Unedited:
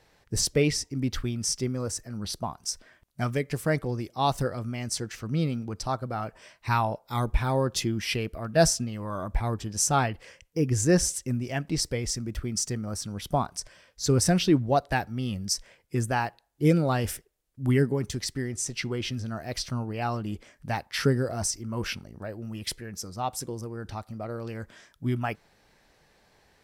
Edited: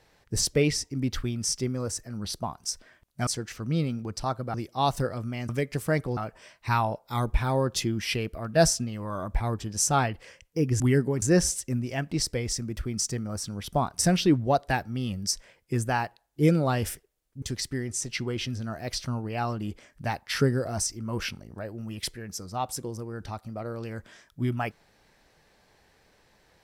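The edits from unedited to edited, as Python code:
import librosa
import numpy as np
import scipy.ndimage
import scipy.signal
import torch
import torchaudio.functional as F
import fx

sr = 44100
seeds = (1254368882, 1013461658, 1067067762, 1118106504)

y = fx.edit(x, sr, fx.swap(start_s=3.27, length_s=0.68, other_s=4.9, other_length_s=1.27),
    fx.cut(start_s=13.57, length_s=0.64),
    fx.move(start_s=17.64, length_s=0.42, to_s=10.8), tone=tone)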